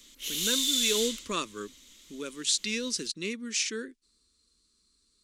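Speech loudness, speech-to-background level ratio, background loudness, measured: −31.5 LKFS, −4.5 dB, −27.0 LKFS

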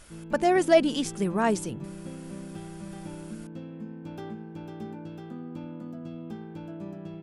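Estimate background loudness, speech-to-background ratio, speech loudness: −40.5 LKFS, 15.5 dB, −25.0 LKFS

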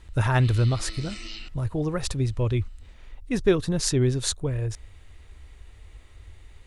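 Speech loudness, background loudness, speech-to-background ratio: −25.5 LKFS, −40.5 LKFS, 15.0 dB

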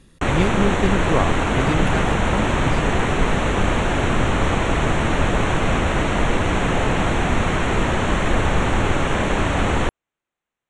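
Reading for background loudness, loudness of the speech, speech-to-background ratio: −20.5 LKFS, −25.0 LKFS, −4.5 dB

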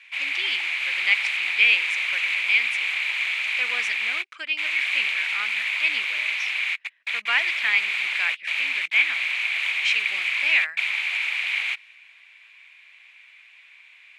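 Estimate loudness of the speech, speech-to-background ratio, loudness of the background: −24.5 LKFS, −1.0 dB, −23.5 LKFS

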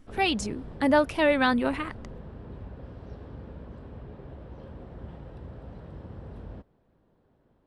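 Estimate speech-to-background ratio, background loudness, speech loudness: 19.0 dB, −44.0 LKFS, −25.0 LKFS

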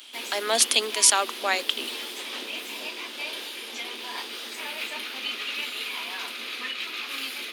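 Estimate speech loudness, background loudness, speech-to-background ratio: −22.0 LKFS, −32.0 LKFS, 10.0 dB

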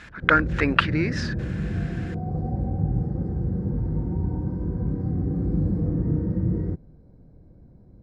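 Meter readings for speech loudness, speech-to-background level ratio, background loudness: −23.0 LKFS, 4.5 dB, −27.5 LKFS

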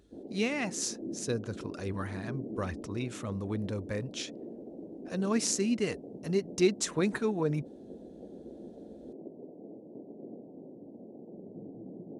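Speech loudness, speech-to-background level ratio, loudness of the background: −33.0 LKFS, 12.5 dB, −45.5 LKFS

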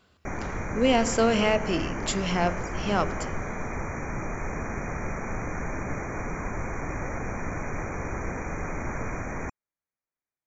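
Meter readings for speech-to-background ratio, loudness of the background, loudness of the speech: 7.5 dB, −33.5 LKFS, −26.0 LKFS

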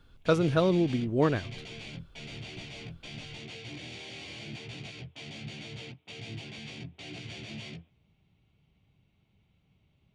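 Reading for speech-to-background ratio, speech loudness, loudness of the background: 15.5 dB, −27.0 LKFS, −42.5 LKFS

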